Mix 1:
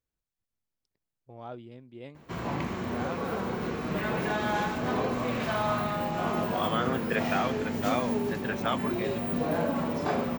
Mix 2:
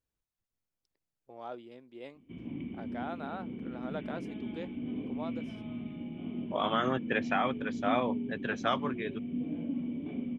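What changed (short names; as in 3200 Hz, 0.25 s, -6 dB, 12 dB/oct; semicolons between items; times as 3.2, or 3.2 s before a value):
first voice: add HPF 290 Hz 12 dB/oct; background: add vocal tract filter i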